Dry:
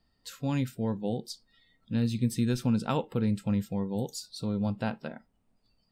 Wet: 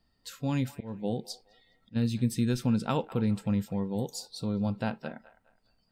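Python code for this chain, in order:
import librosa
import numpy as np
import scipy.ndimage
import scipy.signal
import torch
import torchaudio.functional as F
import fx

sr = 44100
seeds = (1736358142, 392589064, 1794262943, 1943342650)

y = fx.auto_swell(x, sr, attack_ms=238.0, at=(0.66, 1.95), fade=0.02)
y = fx.echo_wet_bandpass(y, sr, ms=208, feedback_pct=31, hz=1300.0, wet_db=-15)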